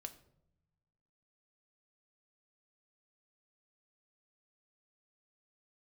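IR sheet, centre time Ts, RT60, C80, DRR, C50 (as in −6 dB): 7 ms, non-exponential decay, 17.5 dB, 7.0 dB, 14.5 dB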